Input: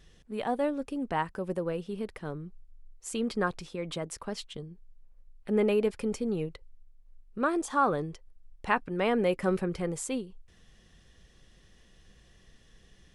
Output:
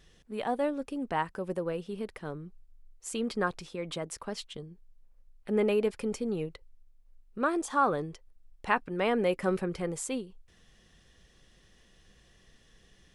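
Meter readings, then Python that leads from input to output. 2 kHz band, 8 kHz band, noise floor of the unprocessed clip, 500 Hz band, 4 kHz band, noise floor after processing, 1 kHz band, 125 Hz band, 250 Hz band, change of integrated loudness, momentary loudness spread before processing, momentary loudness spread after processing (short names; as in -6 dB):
0.0 dB, 0.0 dB, -60 dBFS, -0.5 dB, 0.0 dB, -62 dBFS, 0.0 dB, -2.5 dB, -1.5 dB, -0.5 dB, 16 LU, 17 LU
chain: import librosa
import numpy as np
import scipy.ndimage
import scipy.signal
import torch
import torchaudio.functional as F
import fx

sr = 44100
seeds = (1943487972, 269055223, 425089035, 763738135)

y = fx.low_shelf(x, sr, hz=210.0, db=-4.0)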